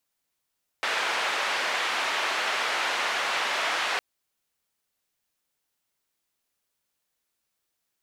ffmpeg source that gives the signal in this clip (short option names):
-f lavfi -i "anoisesrc=c=white:d=3.16:r=44100:seed=1,highpass=f=640,lowpass=f=2400,volume=-12.1dB"